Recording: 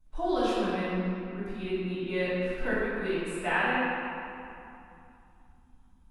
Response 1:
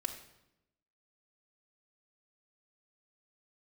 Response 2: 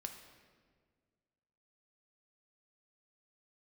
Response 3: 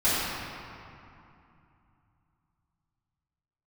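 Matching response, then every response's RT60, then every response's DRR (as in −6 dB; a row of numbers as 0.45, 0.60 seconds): 3; 0.85, 1.7, 2.7 seconds; 1.5, 4.5, −14.5 decibels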